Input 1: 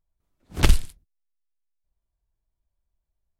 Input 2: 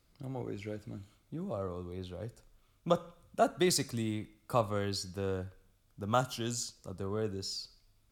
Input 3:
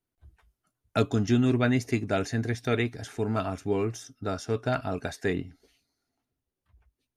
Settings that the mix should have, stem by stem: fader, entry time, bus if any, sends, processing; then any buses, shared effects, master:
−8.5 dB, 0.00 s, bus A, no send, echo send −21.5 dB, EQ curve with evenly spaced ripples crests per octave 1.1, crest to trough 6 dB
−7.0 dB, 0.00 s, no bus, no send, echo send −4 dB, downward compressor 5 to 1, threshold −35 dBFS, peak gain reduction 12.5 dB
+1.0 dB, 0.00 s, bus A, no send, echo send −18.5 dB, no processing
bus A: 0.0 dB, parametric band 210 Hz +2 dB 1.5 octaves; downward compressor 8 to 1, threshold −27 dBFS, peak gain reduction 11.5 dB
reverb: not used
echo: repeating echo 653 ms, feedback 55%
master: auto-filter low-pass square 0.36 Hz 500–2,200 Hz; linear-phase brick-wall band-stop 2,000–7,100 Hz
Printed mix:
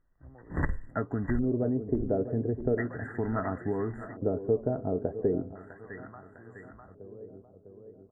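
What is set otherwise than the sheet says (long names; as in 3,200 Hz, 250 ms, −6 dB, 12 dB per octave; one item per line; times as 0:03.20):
stem 1 −8.5 dB → +3.0 dB
stem 2 −7.0 dB → −13.5 dB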